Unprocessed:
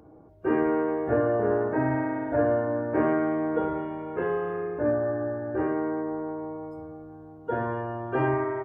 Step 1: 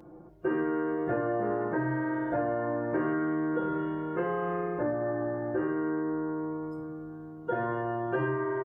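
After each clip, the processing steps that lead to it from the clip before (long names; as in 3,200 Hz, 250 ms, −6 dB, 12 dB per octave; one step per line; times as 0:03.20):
comb filter 5.7 ms, depth 87%
downward compressor 4 to 1, threshold −27 dBFS, peak gain reduction 8 dB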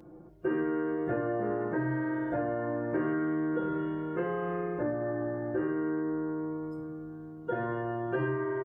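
parametric band 920 Hz −4.5 dB 1.4 octaves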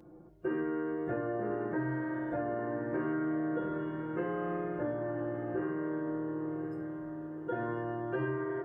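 feedback delay with all-pass diffusion 1,091 ms, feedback 58%, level −11 dB
level −3.5 dB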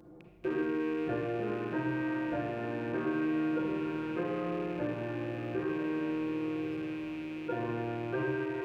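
loose part that buzzes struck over −52 dBFS, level −40 dBFS
convolution reverb RT60 1.2 s, pre-delay 35 ms, DRR 5 dB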